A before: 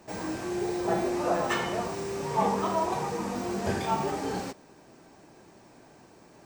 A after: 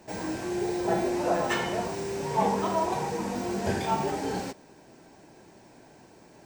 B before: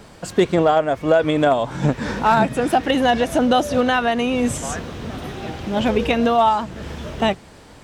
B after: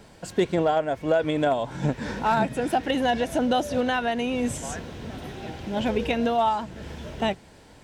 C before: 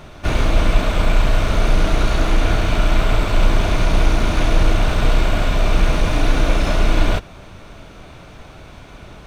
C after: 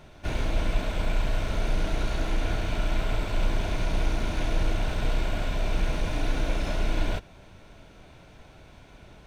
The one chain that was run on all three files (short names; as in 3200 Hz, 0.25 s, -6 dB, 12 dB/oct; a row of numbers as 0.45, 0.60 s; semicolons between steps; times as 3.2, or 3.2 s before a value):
notch 1200 Hz, Q 7.1; normalise peaks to -12 dBFS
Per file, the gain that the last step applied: +1.0, -6.5, -11.0 dB